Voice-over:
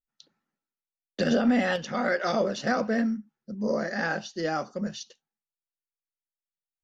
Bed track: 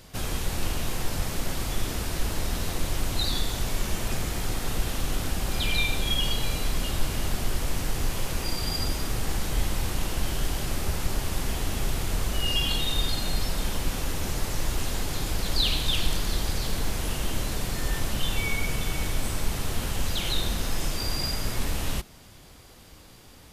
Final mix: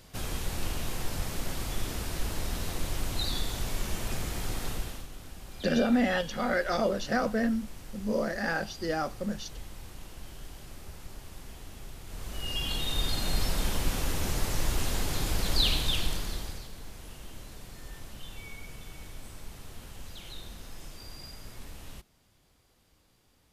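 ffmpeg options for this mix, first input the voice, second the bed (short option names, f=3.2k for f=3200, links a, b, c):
-filter_complex "[0:a]adelay=4450,volume=-2dB[a];[1:a]volume=11.5dB,afade=t=out:st=4.65:d=0.43:silence=0.237137,afade=t=in:st=12.04:d=1.38:silence=0.158489,afade=t=out:st=15.65:d=1.04:silence=0.16788[b];[a][b]amix=inputs=2:normalize=0"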